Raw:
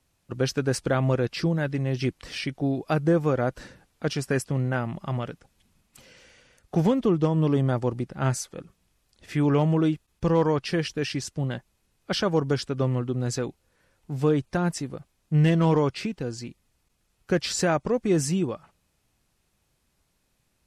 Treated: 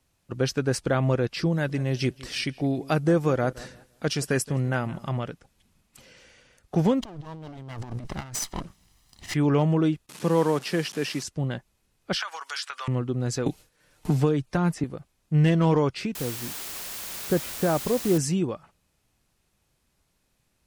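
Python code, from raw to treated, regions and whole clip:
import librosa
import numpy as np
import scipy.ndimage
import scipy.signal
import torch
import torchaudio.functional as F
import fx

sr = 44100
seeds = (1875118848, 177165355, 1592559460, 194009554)

y = fx.chain(x, sr, fx.high_shelf(hz=3800.0, db=7.0),
    fx.echo_filtered(ms=170, feedback_pct=28, hz=2200.0, wet_db=-19.5), at=(1.52, 5.09))
y = fx.chain(y, sr, fx.lower_of_two(delay_ms=1.0),
    fx.over_compress(threshold_db=-37.0, ratio=-1.0),
    fx.peak_eq(hz=5200.0, db=4.0, octaves=1.3), at=(7.02, 9.34))
y = fx.chain(y, sr, fx.delta_mod(bps=64000, step_db=-35.0),
    fx.highpass(hz=150.0, slope=24), at=(10.09, 11.23))
y = fx.chain(y, sr, fx.highpass(hz=1100.0, slope=24),
    fx.transient(attack_db=-2, sustain_db=8),
    fx.band_squash(depth_pct=100), at=(12.16, 12.88))
y = fx.chain(y, sr, fx.gate_hold(open_db=-54.0, close_db=-58.0, hold_ms=71.0, range_db=-21, attack_ms=1.4, release_ms=100.0),
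    fx.comb(ms=6.6, depth=0.37),
    fx.band_squash(depth_pct=100), at=(13.46, 14.84))
y = fx.chain(y, sr, fx.lowpass(hz=1200.0, slope=12),
    fx.quant_dither(seeds[0], bits=6, dither='triangular'), at=(16.15, 18.18))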